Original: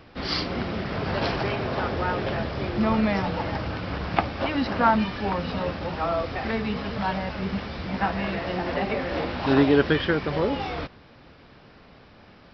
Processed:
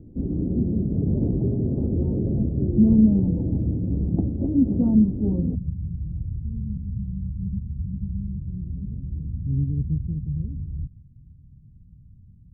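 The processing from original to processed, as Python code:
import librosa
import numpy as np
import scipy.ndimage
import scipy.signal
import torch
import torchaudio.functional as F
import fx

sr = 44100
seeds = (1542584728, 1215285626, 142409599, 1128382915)

y = fx.cheby2_lowpass(x, sr, hz=fx.steps((0.0, 1900.0), (5.54, 860.0)), order=4, stop_db=80)
y = y * librosa.db_to_amplitude(8.5)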